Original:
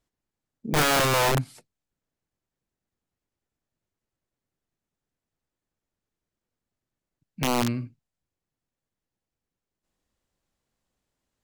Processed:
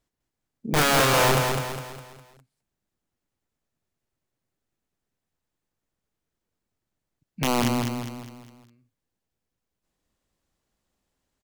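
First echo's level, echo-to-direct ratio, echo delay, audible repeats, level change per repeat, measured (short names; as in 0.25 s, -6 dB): -5.0 dB, -4.0 dB, 0.204 s, 5, -7.5 dB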